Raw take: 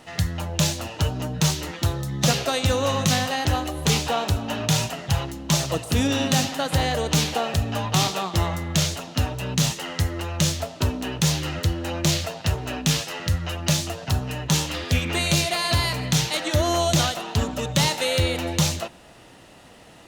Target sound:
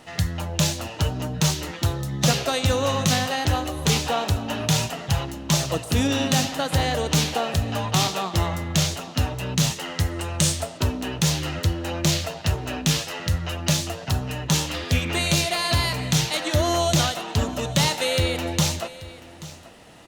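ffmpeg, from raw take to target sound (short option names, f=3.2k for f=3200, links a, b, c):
-filter_complex "[0:a]asettb=1/sr,asplit=3[a][b][c];[a]atrim=end=10.114[d];[b]atrim=start=10.11:end=10.78,asetpts=PTS-STARTPTS,afade=t=in:d=0.004:c=qsin,afade=t=out:st=0.666:d=0.004:c=qsin,equalizer=f=8.7k:t=o:w=0.37:g=11.5[e];[c]atrim=start=10.776[f];[d][e]acrossfade=d=0.004:c1=hsin:c2=qsin[g];[g][f]acrossfade=d=0.004:c1=qsin:c2=hsin,aecho=1:1:833:0.126"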